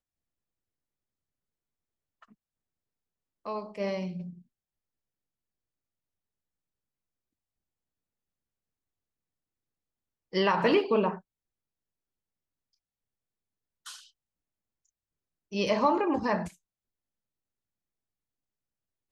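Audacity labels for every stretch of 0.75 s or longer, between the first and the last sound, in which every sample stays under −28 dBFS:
4.060000	10.350000	silence
11.110000	15.550000	silence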